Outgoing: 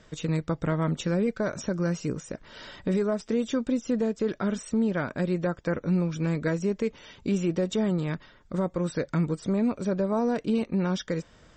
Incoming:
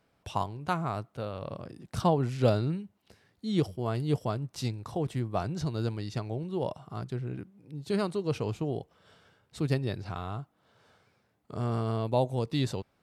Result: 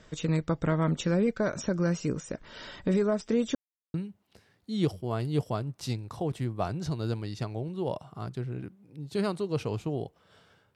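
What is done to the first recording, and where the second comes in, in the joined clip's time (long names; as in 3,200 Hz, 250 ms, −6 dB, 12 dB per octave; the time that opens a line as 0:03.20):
outgoing
0:03.55–0:03.94: silence
0:03.94: continue with incoming from 0:02.69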